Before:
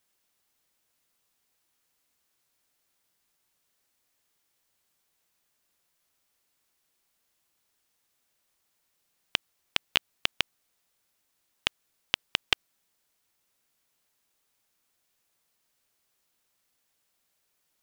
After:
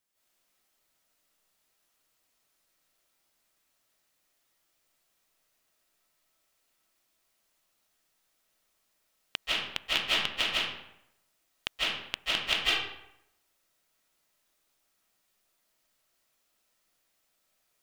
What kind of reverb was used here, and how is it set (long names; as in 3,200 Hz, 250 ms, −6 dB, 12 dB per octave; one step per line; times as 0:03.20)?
comb and all-pass reverb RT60 0.8 s, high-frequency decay 0.7×, pre-delay 120 ms, DRR −9.5 dB
level −7.5 dB